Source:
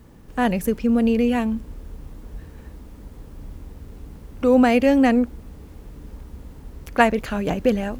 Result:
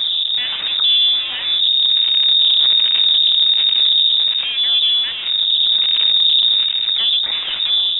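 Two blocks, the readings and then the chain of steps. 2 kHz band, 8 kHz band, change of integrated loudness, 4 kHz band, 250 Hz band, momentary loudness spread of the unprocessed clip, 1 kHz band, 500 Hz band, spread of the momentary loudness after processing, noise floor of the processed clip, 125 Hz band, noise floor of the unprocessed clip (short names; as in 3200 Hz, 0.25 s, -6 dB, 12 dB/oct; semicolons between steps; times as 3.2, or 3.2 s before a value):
-0.5 dB, n/a, +8.0 dB, +32.5 dB, under -30 dB, 11 LU, under -10 dB, under -20 dB, 6 LU, -23 dBFS, under -15 dB, -44 dBFS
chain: delta modulation 64 kbps, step -20.5 dBFS; HPF 46 Hz 12 dB/oct; tilt shelf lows +5.5 dB, about 720 Hz; AGC gain up to 11 dB; in parallel at -1 dB: limiter -10 dBFS, peak gain reduction 9 dB; on the sum: soft clip -6.5 dBFS, distortion -14 dB; phaser stages 2, 1.3 Hz, lowest notch 240–1500 Hz; one-sided clip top -15.5 dBFS; air absorption 230 m; inverted band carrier 3700 Hz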